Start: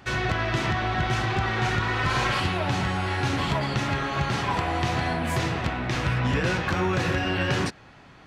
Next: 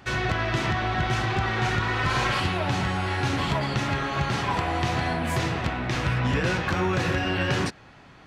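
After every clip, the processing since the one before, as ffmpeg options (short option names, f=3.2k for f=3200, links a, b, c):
-af anull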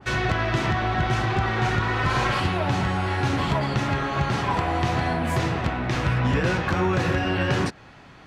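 -af "adynamicequalizer=threshold=0.0158:dfrequency=1700:dqfactor=0.7:tfrequency=1700:tqfactor=0.7:attack=5:release=100:ratio=0.375:range=2:mode=cutabove:tftype=highshelf,volume=2.5dB"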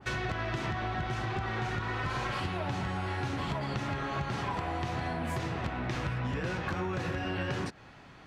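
-af "acompressor=threshold=-25dB:ratio=6,volume=-5dB"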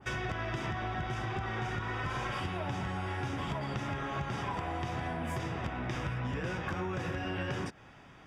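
-af "asuperstop=centerf=4200:order=8:qfactor=6.9,volume=-2dB"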